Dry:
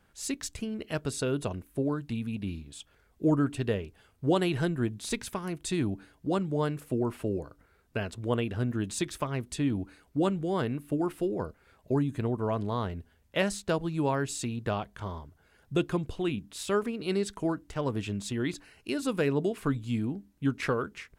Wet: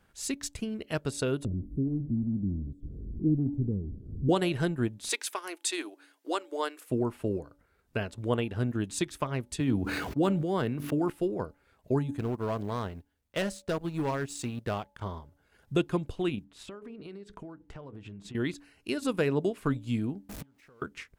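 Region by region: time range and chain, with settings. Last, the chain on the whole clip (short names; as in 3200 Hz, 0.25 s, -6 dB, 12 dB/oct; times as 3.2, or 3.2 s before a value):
1.45–4.29 zero-crossing step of -29.5 dBFS + inverse Chebyshev low-pass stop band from 810 Hz, stop band 50 dB
5.09–6.9 elliptic high-pass 310 Hz, stop band 50 dB + tilt shelf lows -6.5 dB, about 780 Hz
9.6–11.1 median filter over 5 samples + HPF 79 Hz 24 dB/oct + sustainer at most 27 dB/s
12.17–15.02 G.711 law mismatch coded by A + overloaded stage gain 25 dB
16.44–18.35 LPF 1800 Hz 6 dB/oct + notches 60/120/180/240/300/360/420/480 Hz + compressor 12:1, threshold -40 dBFS
20.29–20.82 zero-crossing step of -35.5 dBFS + compressor 4:1, threshold -28 dBFS + flipped gate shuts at -32 dBFS, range -26 dB
whole clip: de-hum 285.5 Hz, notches 3; transient shaper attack +1 dB, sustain -5 dB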